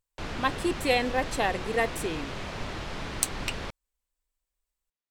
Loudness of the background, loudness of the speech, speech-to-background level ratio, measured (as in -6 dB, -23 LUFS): -36.5 LUFS, -29.0 LUFS, 7.5 dB